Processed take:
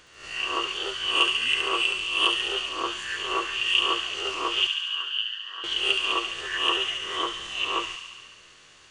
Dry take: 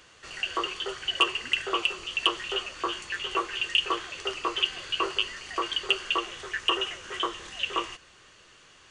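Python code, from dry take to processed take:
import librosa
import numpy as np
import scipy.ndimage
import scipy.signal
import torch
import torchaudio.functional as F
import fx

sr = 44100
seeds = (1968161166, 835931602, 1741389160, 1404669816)

y = fx.spec_swells(x, sr, rise_s=0.56)
y = fx.double_bandpass(y, sr, hz=2200.0, octaves=0.86, at=(4.67, 5.64))
y = fx.echo_wet_highpass(y, sr, ms=70, feedback_pct=74, hz=2300.0, wet_db=-4.0)
y = F.gain(torch.from_numpy(y), -1.5).numpy()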